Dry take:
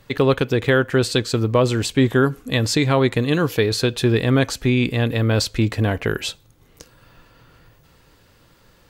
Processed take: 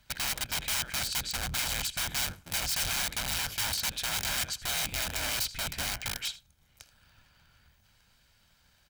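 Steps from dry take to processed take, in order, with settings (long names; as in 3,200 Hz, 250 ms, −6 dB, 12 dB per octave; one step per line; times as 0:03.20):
sub-harmonics by changed cycles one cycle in 3, inverted
high-shelf EQ 9,200 Hz −5 dB
single-tap delay 80 ms −17 dB
wrap-around overflow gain 17 dB
guitar amp tone stack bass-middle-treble 5-5-5
comb filter 1.3 ms, depth 38%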